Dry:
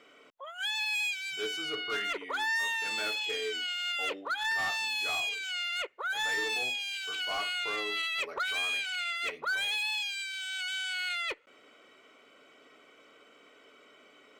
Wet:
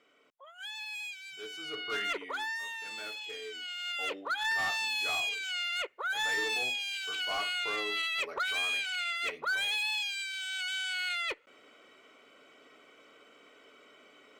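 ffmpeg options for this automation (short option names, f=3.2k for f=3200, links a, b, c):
-af "volume=8.5dB,afade=t=in:st=1.49:d=0.62:silence=0.334965,afade=t=out:st=2.11:d=0.47:silence=0.375837,afade=t=in:st=3.53:d=0.77:silence=0.398107"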